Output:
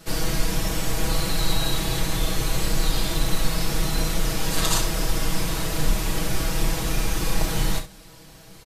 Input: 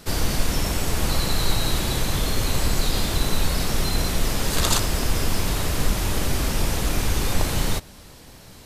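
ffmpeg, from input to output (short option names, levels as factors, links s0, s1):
-filter_complex "[0:a]aecho=1:1:6.2:0.98,asplit=2[s0][s1];[s1]aecho=0:1:32|66:0.422|0.266[s2];[s0][s2]amix=inputs=2:normalize=0,volume=0.562"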